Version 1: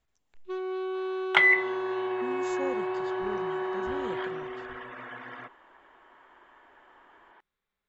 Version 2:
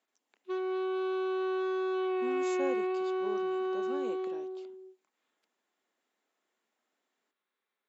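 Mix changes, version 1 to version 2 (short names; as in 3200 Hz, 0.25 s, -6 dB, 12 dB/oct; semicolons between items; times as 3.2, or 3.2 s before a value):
second sound: muted; master: add steep high-pass 230 Hz 36 dB/oct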